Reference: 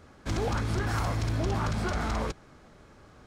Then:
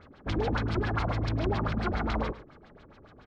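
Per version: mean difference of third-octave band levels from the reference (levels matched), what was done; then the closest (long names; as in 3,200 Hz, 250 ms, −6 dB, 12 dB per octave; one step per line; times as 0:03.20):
5.5 dB: auto-filter low-pass sine 7.2 Hz 290–4,300 Hz
on a send: single-tap delay 106 ms −15.5 dB
on the sum: level −1 dB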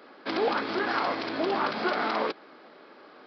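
8.0 dB: high-pass filter 280 Hz 24 dB per octave
downsampling to 11,025 Hz
level +6 dB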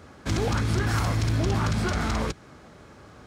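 1.0 dB: high-pass filter 59 Hz
dynamic equaliser 730 Hz, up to −5 dB, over −44 dBFS, Q 0.75
level +6 dB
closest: third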